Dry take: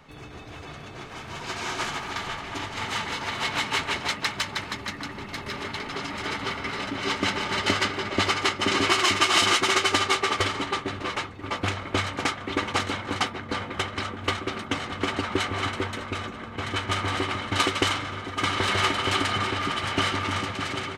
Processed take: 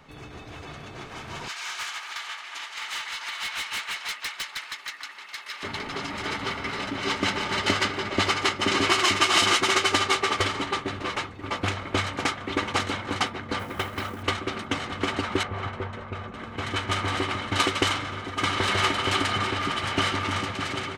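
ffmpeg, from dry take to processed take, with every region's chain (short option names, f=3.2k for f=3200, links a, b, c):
-filter_complex "[0:a]asettb=1/sr,asplit=3[a][b][c];[a]atrim=end=1.484[d];[b]atrim=start=1.48:end=5.63,asetpts=PTS-STARTPTS,afade=t=in:d=0.004:c=qsin,afade=t=out:st=4.146:d=0.004:c=qsin,highpass=1.4k,asoftclip=type=hard:threshold=-27dB[e];[c]atrim=start=5.626[f];[d][e]acrossfade=d=0.004:c1=hsin:c2=qsin[g];[g][f]acrossfade=d=0.004:c1=qsin:c2=hsin,asettb=1/sr,asplit=3[h][i][j];[h]atrim=end=13.594[k];[i]atrim=start=13.59:end=14.23,asetpts=PTS-STARTPTS,afade=t=in:d=0.004:c=qsin,afade=t=out:st=0.636:d=0.004:c=qsin,aemphasis=mode=reproduction:type=50kf,acrusher=bits=4:mode=log:mix=0:aa=0.000001[l];[j]atrim=start=14.226[m];[k][l]acrossfade=d=0.004:c1=hsin:c2=qsin[n];[n][m]acrossfade=d=0.004:c1=qsin:c2=hsin,asettb=1/sr,asplit=3[o][p][q];[o]atrim=end=15.434[r];[p]atrim=start=15.43:end=16.34,asetpts=PTS-STARTPTS,afade=t=in:d=0.004:c=qsin,afade=t=out:st=0.906:d=0.004:c=qsin,lowpass=f=1k:p=1,equalizer=f=300:w=3.9:g=-12.5[s];[q]atrim=start=16.336[t];[r][s]acrossfade=d=0.004:c1=hsin:c2=qsin[u];[u][t]acrossfade=d=0.004:c1=qsin:c2=hsin"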